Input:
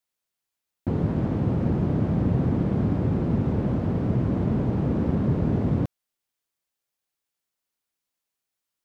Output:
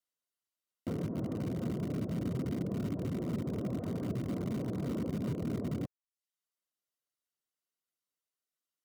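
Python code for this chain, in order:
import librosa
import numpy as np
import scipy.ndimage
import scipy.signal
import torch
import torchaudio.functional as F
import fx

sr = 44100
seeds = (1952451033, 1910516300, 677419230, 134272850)

p1 = fx.dereverb_blind(x, sr, rt60_s=0.52)
p2 = fx.env_lowpass_down(p1, sr, base_hz=520.0, full_db=-20.5)
p3 = fx.highpass(p2, sr, hz=140.0, slope=6)
p4 = fx.notch(p3, sr, hz=2300.0, q=8.1)
p5 = (np.mod(10.0 ** (23.0 / 20.0) * p4 + 1.0, 2.0) - 1.0) / 10.0 ** (23.0 / 20.0)
p6 = p4 + (p5 * 10.0 ** (-12.0 / 20.0))
p7 = fx.notch_comb(p6, sr, f0_hz=850.0)
y = p7 * 10.0 ** (-7.5 / 20.0)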